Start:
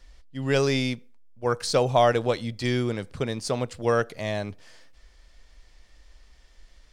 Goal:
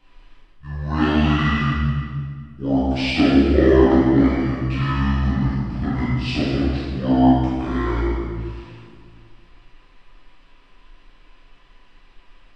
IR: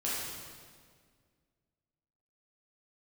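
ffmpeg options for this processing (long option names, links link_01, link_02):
-filter_complex "[0:a]asetrate=24299,aresample=44100[link_01];[1:a]atrim=start_sample=2205[link_02];[link_01][link_02]afir=irnorm=-1:irlink=0"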